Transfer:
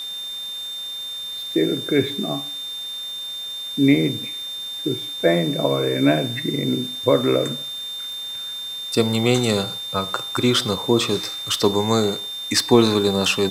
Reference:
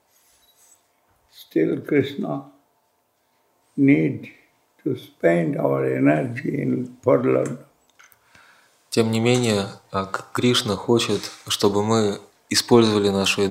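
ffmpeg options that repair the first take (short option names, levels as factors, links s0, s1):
-af "adeclick=t=4,bandreject=f=3600:w=30,afwtdn=0.0071"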